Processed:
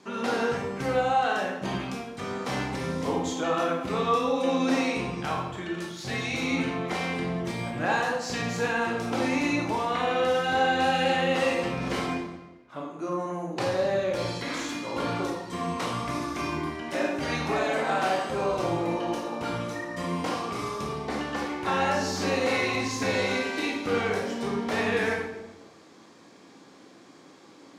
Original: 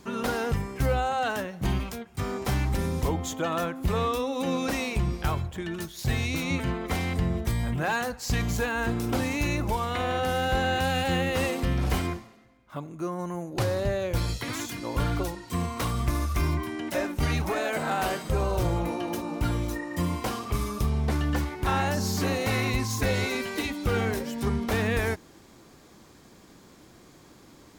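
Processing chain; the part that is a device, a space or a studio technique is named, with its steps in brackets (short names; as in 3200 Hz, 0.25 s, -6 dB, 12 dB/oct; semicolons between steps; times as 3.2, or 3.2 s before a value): supermarket ceiling speaker (BPF 230–6700 Hz; reverb RT60 1.0 s, pre-delay 18 ms, DRR -1.5 dB); gain -1.5 dB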